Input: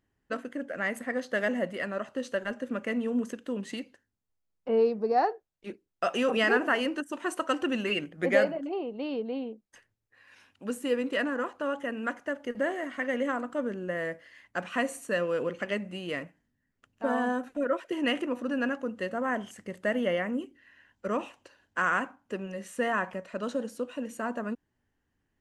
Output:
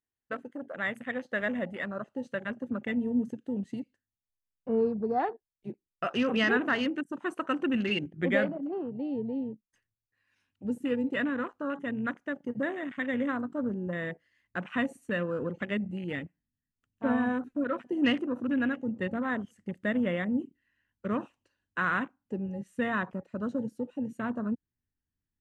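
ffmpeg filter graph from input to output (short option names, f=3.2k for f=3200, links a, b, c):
-filter_complex "[0:a]asettb=1/sr,asplit=3[a][b][c];[a]atrim=end=17.054[d];[b]atrim=start=17.05:end=19.53,asetpts=PTS-STARTPTS,afade=t=in:d=0.004:c=qsin,afade=t=out:st=2.476:d=0.004:c=qsin,aphaser=in_gain=1:out_gain=1:delay=3.1:decay=0.23:speed=1:type=sinusoidal,aecho=1:1:651:0.0708,atrim=end_sample=109368[e];[c]atrim=start=19.526[f];[d][e]acrossfade=d=0.004:c1=hsin:c2=qsin[g];[g][f]acrossfade=d=0.004:c1=qsin:c2=hsin,lowshelf=f=390:g=-7,afwtdn=0.0112,asubboost=boost=5.5:cutoff=240"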